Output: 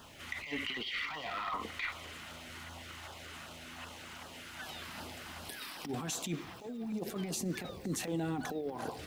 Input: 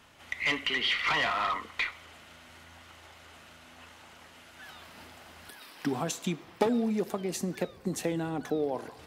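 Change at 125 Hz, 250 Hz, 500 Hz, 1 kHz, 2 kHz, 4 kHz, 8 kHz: -3.0, -6.0, -9.0, -7.5, -8.0, -7.0, -1.0 dB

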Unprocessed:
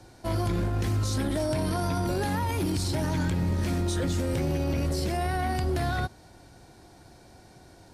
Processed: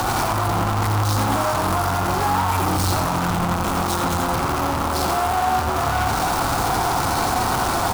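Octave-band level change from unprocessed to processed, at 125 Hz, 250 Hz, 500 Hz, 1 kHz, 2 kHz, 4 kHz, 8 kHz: +4.0, +4.5, +7.0, +16.0, +11.5, +10.5, +12.0 dB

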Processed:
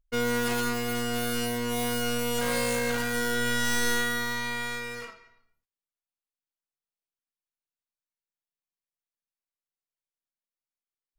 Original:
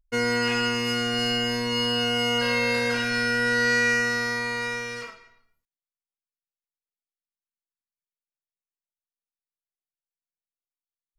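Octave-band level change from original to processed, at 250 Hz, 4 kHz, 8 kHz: -2.5, -7.5, +3.5 dB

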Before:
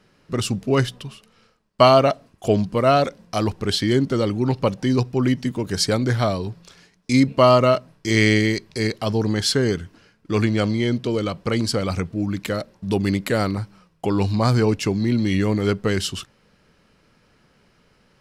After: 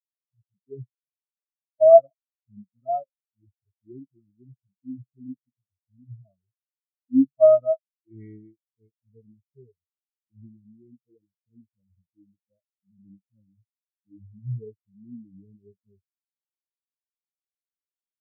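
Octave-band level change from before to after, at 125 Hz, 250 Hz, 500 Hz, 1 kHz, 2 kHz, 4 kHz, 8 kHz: -21.0 dB, -12.0 dB, -2.5 dB, -8.0 dB, under -40 dB, under -40 dB, under -40 dB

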